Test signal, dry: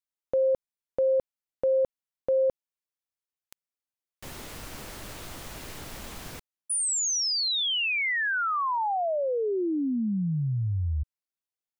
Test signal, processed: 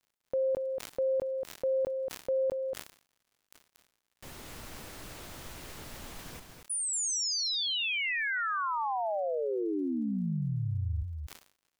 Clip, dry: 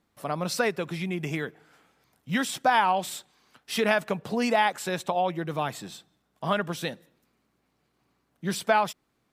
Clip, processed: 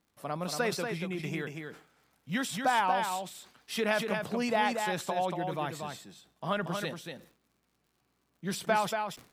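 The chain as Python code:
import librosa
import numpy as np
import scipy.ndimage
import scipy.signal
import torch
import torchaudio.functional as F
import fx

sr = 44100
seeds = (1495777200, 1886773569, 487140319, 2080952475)

p1 = fx.dmg_crackle(x, sr, seeds[0], per_s=72.0, level_db=-52.0)
p2 = p1 + fx.echo_single(p1, sr, ms=234, db=-5.5, dry=0)
p3 = fx.sustainer(p2, sr, db_per_s=130.0)
y = p3 * 10.0 ** (-5.5 / 20.0)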